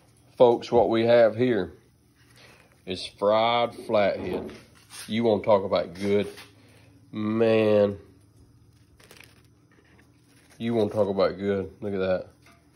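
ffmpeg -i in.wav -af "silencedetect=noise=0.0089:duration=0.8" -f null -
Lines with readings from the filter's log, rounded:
silence_start: 8.01
silence_end: 9.00 | silence_duration: 0.99
silence_start: 9.26
silence_end: 10.52 | silence_duration: 1.26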